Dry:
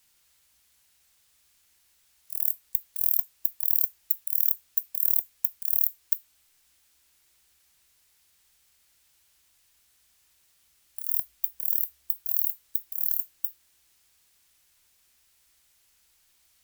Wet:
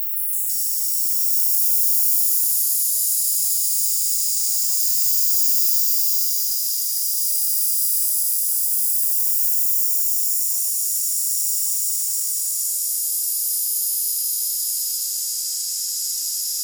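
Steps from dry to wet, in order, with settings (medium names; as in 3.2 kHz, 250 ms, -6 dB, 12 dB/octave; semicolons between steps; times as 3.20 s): Paulstretch 5.8×, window 0.50 s, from 11.44 s; ever faster or slower copies 165 ms, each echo -6 st, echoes 3; trim +7.5 dB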